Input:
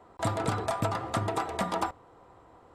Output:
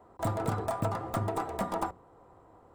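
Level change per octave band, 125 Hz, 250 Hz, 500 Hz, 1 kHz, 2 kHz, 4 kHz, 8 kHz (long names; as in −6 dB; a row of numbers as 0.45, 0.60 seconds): −0.5, −1.0, −1.5, −2.5, −6.0, −9.0, −5.5 decibels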